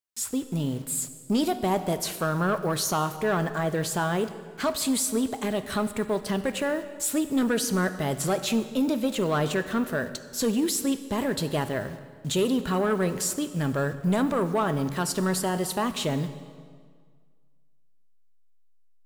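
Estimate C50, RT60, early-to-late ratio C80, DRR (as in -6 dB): 12.0 dB, 1.8 s, 13.0 dB, 10.5 dB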